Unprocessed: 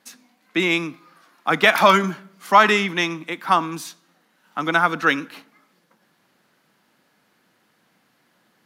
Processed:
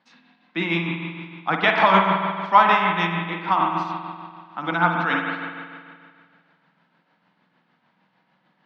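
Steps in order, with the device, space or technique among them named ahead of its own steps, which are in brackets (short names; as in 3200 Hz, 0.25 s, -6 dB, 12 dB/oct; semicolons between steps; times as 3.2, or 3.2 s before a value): combo amplifier with spring reverb and tremolo (spring tank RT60 2 s, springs 47 ms, chirp 45 ms, DRR -0.5 dB; tremolo 6.6 Hz, depth 45%; speaker cabinet 76–4200 Hz, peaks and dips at 170 Hz +6 dB, 410 Hz -6 dB, 920 Hz +7 dB); gain -4 dB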